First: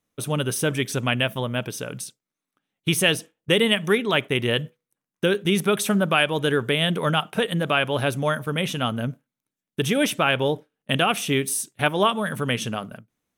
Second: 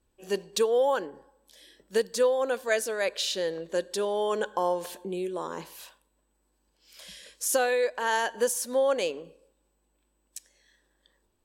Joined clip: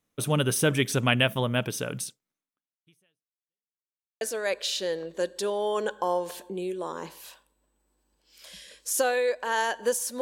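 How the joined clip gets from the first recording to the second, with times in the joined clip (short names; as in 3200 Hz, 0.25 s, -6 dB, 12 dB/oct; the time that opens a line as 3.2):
first
2.31–3.75 fade out exponential
3.75–4.21 mute
4.21 switch to second from 2.76 s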